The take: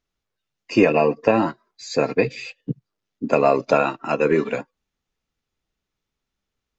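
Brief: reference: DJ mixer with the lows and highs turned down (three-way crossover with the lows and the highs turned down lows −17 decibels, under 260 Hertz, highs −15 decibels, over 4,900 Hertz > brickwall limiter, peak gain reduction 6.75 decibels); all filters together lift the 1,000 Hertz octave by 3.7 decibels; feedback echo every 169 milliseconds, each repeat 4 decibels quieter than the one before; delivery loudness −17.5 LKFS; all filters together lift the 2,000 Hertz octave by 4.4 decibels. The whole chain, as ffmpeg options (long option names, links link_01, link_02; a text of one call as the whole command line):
ffmpeg -i in.wav -filter_complex "[0:a]acrossover=split=260 4900:gain=0.141 1 0.178[link_01][link_02][link_03];[link_01][link_02][link_03]amix=inputs=3:normalize=0,equalizer=frequency=1000:width_type=o:gain=4,equalizer=frequency=2000:width_type=o:gain=5.5,aecho=1:1:169|338|507|676|845|1014|1183|1352|1521:0.631|0.398|0.25|0.158|0.0994|0.0626|0.0394|0.0249|0.0157,volume=2.5dB,alimiter=limit=-5.5dB:level=0:latency=1" out.wav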